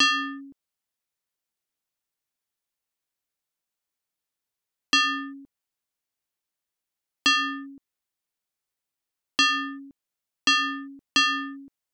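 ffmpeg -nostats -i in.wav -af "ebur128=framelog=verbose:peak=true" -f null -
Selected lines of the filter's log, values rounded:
Integrated loudness:
  I:         -23.3 LUFS
  Threshold: -35.0 LUFS
Loudness range:
  LRA:         4.8 LU
  Threshold: -48.6 LUFS
  LRA low:   -30.1 LUFS
  LRA high:  -25.4 LUFS
True peak:
  Peak:      -13.4 dBFS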